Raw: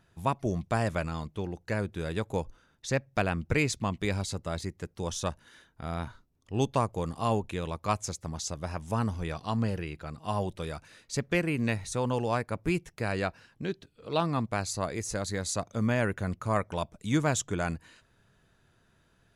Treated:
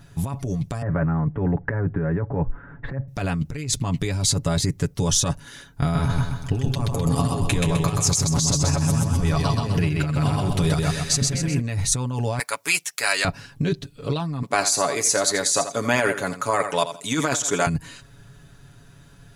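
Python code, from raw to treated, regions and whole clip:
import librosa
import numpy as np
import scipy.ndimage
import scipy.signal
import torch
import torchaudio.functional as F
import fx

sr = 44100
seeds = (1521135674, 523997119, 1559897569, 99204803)

y = fx.chain(x, sr, fx.ellip_lowpass(hz=1800.0, order=4, stop_db=70),
    fx.band_squash(depth_pct=100), at=(0.82, 3.08))
y = fx.chain(y, sr, fx.over_compress(threshold_db=-39.0, ratio=-1.0),
    fx.echo_feedback(ms=128, feedback_pct=48, wet_db=-3.0), at=(5.82, 11.61))
y = fx.chain(y, sr, fx.highpass(hz=980.0, slope=12),
    fx.high_shelf(hz=3200.0, db=8.0), at=(12.39, 13.25))
y = fx.chain(y, sr, fx.highpass(hz=430.0, slope=12),
    fx.echo_feedback(ms=84, feedback_pct=24, wet_db=-12), at=(14.42, 17.67))
y = fx.bass_treble(y, sr, bass_db=8, treble_db=6)
y = y + 0.68 * np.pad(y, (int(7.1 * sr / 1000.0), 0))[:len(y)]
y = fx.over_compress(y, sr, threshold_db=-29.0, ratio=-1.0)
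y = y * librosa.db_to_amplitude(7.5)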